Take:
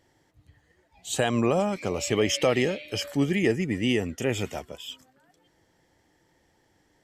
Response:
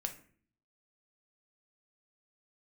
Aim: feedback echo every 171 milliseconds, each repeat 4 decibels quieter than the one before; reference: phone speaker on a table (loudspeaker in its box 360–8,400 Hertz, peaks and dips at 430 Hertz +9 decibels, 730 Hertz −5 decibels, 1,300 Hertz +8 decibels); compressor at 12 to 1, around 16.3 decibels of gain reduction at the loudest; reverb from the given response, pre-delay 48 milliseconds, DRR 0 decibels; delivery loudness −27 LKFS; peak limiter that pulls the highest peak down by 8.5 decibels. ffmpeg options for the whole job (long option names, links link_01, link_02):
-filter_complex "[0:a]acompressor=threshold=-35dB:ratio=12,alimiter=level_in=6.5dB:limit=-24dB:level=0:latency=1,volume=-6.5dB,aecho=1:1:171|342|513|684|855|1026|1197|1368|1539:0.631|0.398|0.25|0.158|0.0994|0.0626|0.0394|0.0249|0.0157,asplit=2[link_01][link_02];[1:a]atrim=start_sample=2205,adelay=48[link_03];[link_02][link_03]afir=irnorm=-1:irlink=0,volume=0.5dB[link_04];[link_01][link_04]amix=inputs=2:normalize=0,highpass=frequency=360:width=0.5412,highpass=frequency=360:width=1.3066,equalizer=frequency=430:width_type=q:width=4:gain=9,equalizer=frequency=730:width_type=q:width=4:gain=-5,equalizer=frequency=1300:width_type=q:width=4:gain=8,lowpass=frequency=8400:width=0.5412,lowpass=frequency=8400:width=1.3066,volume=9.5dB"